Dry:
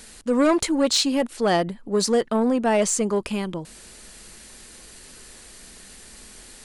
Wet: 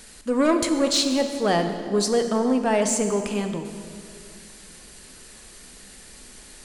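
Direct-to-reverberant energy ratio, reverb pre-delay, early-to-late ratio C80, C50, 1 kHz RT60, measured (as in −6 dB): 6.0 dB, 5 ms, 8.5 dB, 7.5 dB, 2.1 s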